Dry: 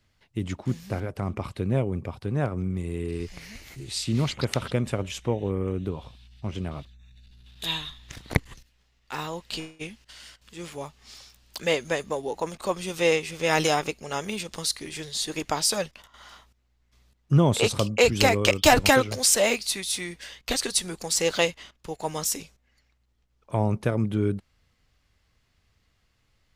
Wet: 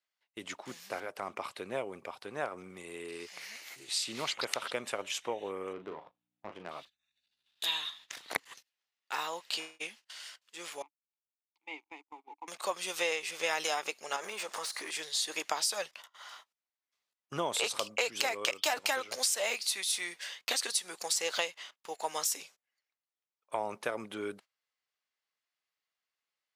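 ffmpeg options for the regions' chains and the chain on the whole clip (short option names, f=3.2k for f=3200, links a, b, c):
-filter_complex "[0:a]asettb=1/sr,asplit=3[a][b][c];[a]atrim=end=5.734[d];[b]atrim=start=5.73:end=6.69,asetpts=PTS-STARTPTS,afade=t=in:d=0.004:c=qsin,afade=t=out:st=0.956:d=0.004:c=qsin,aeval=exprs='val(0)+0.00447*(sin(2*PI*60*n/s)+sin(2*PI*2*60*n/s)/2+sin(2*PI*3*60*n/s)/3+sin(2*PI*4*60*n/s)/4+sin(2*PI*5*60*n/s)/5)':c=same,adynamicsmooth=sensitivity=4.5:basefreq=710,asplit=2[e][f];[f]adelay=39,volume=-8.5dB[g];[e][g]amix=inputs=2:normalize=0,atrim=end_sample=42336[h];[c]atrim=start=6.686[i];[d][h]acrossfade=d=0.004:c1=hsin:c2=qsin[j];[j][i]acrossfade=d=0.004:c1=qsin:c2=hsin,asettb=1/sr,asplit=3[k][l][m];[k]atrim=end=10.824[n];[l]atrim=start=10.82:end=12.48,asetpts=PTS-STARTPTS,afade=t=in:d=0.004:c=qsin,afade=t=out:st=1.656:d=0.004:c=qsin,aeval=exprs='sgn(val(0))*max(abs(val(0))-0.0119,0)':c=same,asplit=3[o][p][q];[o]bandpass=f=300:t=q:w=8,volume=0dB[r];[p]bandpass=f=870:t=q:w=8,volume=-6dB[s];[q]bandpass=f=2.24k:t=q:w=8,volume=-9dB[t];[r][s][t]amix=inputs=3:normalize=0[u];[m]atrim=start=12.476[v];[n][u]acrossfade=d=0.004:c1=hsin:c2=qsin[w];[w][v]acrossfade=d=0.004:c1=qsin:c2=hsin,asettb=1/sr,asplit=3[x][y][z];[x]atrim=end=14.164[aa];[y]atrim=start=14.16:end=14.91,asetpts=PTS-STARTPTS,afade=t=in:d=0.004:c=qsin,afade=t=out:st=0.746:d=0.004:c=qsin,equalizer=f=3.4k:w=0.77:g=-10,acompressor=threshold=-38dB:ratio=16:attack=3.2:release=140:knee=1:detection=peak,asplit=2[ab][ac];[ac]highpass=f=720:p=1,volume=24dB,asoftclip=type=tanh:threshold=-23dB[ad];[ab][ad]amix=inputs=2:normalize=0,lowpass=f=3.2k:p=1,volume=-6dB[ae];[z]atrim=start=14.906[af];[aa][ae]acrossfade=d=0.004:c1=hsin:c2=qsin[ag];[ag][af]acrossfade=d=0.004:c1=qsin:c2=hsin,highpass=680,agate=range=-17dB:threshold=-52dB:ratio=16:detection=peak,acompressor=threshold=-28dB:ratio=6"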